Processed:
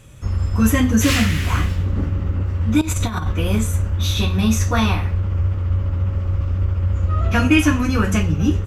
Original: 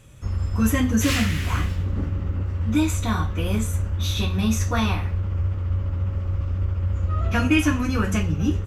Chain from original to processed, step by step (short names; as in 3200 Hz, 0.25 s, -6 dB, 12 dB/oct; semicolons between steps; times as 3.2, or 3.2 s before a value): 2.81–3.32 negative-ratio compressor -25 dBFS, ratio -0.5; gain +4.5 dB